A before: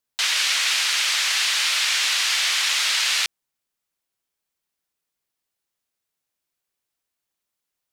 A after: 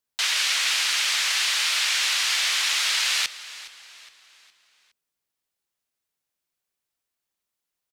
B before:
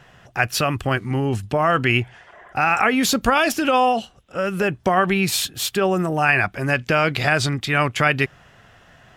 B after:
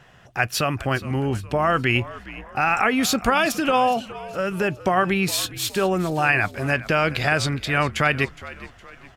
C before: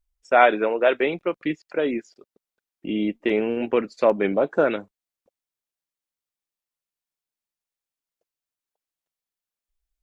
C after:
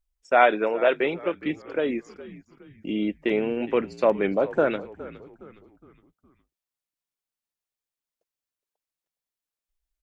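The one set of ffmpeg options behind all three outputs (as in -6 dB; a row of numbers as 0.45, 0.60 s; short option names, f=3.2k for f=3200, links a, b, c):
-filter_complex "[0:a]asplit=5[a][b][c][d][e];[b]adelay=414,afreqshift=-64,volume=-17dB[f];[c]adelay=828,afreqshift=-128,volume=-24.5dB[g];[d]adelay=1242,afreqshift=-192,volume=-32.1dB[h];[e]adelay=1656,afreqshift=-256,volume=-39.6dB[i];[a][f][g][h][i]amix=inputs=5:normalize=0,volume=-2dB"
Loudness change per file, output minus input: -2.0, -2.0, -2.0 LU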